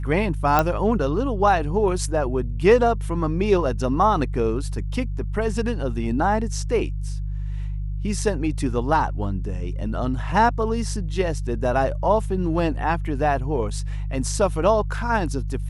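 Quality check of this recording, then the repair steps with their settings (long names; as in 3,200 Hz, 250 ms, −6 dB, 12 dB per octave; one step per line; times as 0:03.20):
mains hum 50 Hz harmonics 3 −27 dBFS
0:00.59: click −5 dBFS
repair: click removal
hum removal 50 Hz, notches 3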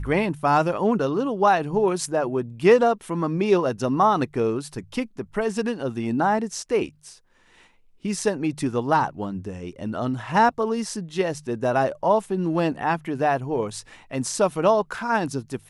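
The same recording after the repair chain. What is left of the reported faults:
none of them is left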